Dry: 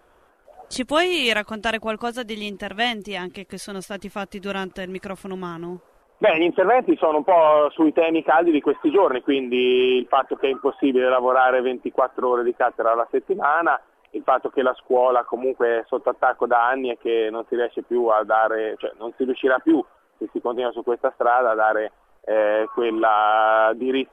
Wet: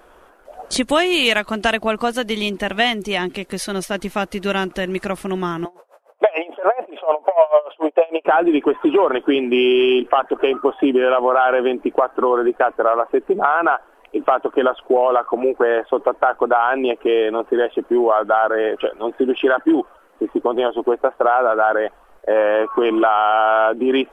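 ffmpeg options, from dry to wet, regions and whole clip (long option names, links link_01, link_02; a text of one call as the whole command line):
ffmpeg -i in.wav -filter_complex "[0:a]asettb=1/sr,asplit=3[link_01][link_02][link_03];[link_01]atrim=end=5.654[link_04];[link_02]atrim=start=5.65:end=8.25,asetpts=PTS-STARTPTS,afade=type=in:duration=0.004:curve=qsin,afade=type=out:start_time=2.596:duration=0.004:curve=qsin,highpass=frequency=600:width_type=q:width=2.7,aeval=exprs='val(0)*pow(10,-27*(0.5-0.5*cos(2*PI*6.8*n/s))/20)':channel_layout=same[link_05];[link_03]atrim=start=8.246[link_06];[link_04][link_05]acrossfade=duration=0.004:curve1=hsin:curve2=qsin[link_07];[link_07][link_06]acrossfade=duration=0.004:curve1=qsin:curve2=hsin,equalizer=frequency=100:width=2.7:gain=-12.5,acompressor=threshold=-23dB:ratio=2.5,volume=8.5dB" out.wav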